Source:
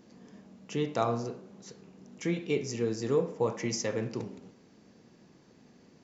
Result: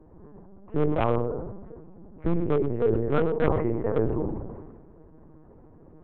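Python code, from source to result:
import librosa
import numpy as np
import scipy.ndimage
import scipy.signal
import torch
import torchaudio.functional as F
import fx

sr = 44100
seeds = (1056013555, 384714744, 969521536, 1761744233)

p1 = scipy.signal.sosfilt(scipy.signal.butter(4, 1200.0, 'lowpass', fs=sr, output='sos'), x)
p2 = p1 + 0.65 * np.pad(p1, (int(6.5 * sr / 1000.0), 0))[:len(p1)]
p3 = fx.rider(p2, sr, range_db=10, speed_s=0.5)
p4 = p2 + (p3 * librosa.db_to_amplitude(-3.0))
p5 = 10.0 ** (-16.5 / 20.0) * (np.abs((p4 / 10.0 ** (-16.5 / 20.0) + 3.0) % 4.0 - 2.0) - 1.0)
p6 = p5 + 10.0 ** (-21.5 / 20.0) * np.pad(p5, (int(108 * sr / 1000.0), 0))[:len(p5)]
p7 = fx.lpc_vocoder(p6, sr, seeds[0], excitation='pitch_kept', order=8)
y = fx.sustainer(p7, sr, db_per_s=38.0)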